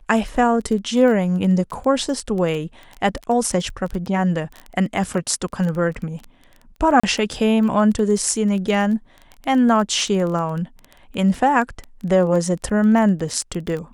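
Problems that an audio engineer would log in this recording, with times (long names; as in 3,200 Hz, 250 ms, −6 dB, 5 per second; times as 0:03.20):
surface crackle 14 per second −25 dBFS
0:07.00–0:07.04: drop-out 35 ms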